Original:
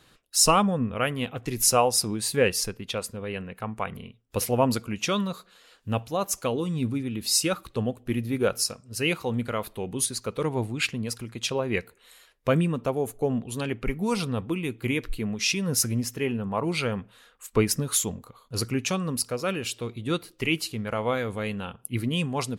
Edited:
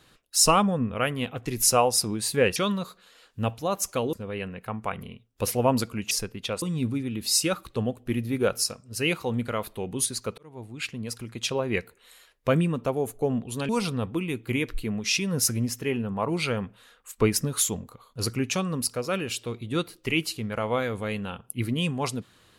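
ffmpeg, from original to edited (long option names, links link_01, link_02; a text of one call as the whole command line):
ffmpeg -i in.wav -filter_complex "[0:a]asplit=7[link_01][link_02][link_03][link_04][link_05][link_06][link_07];[link_01]atrim=end=2.562[link_08];[link_02]atrim=start=5.048:end=6.622[link_09];[link_03]atrim=start=3.068:end=5.052[link_10];[link_04]atrim=start=2.558:end=3.072[link_11];[link_05]atrim=start=6.618:end=10.38,asetpts=PTS-STARTPTS,afade=type=out:start_time=3.758:duration=0.004:curve=hsin[link_12];[link_06]atrim=start=10.38:end=13.692,asetpts=PTS-STARTPTS,afade=type=in:duration=0.95[link_13];[link_07]atrim=start=14.038[link_14];[link_08][link_09]acrossfade=duration=0.004:curve1=hsin:curve2=hsin[link_15];[link_15][link_10]acrossfade=duration=0.004:curve1=hsin:curve2=hsin[link_16];[link_16][link_11]acrossfade=duration=0.004:curve1=hsin:curve2=hsin[link_17];[link_12][link_13]concat=n=2:v=0:a=1[link_18];[link_17][link_18]acrossfade=duration=0.004:curve1=hsin:curve2=hsin[link_19];[link_19][link_14]acrossfade=duration=0.004:curve1=hsin:curve2=hsin" out.wav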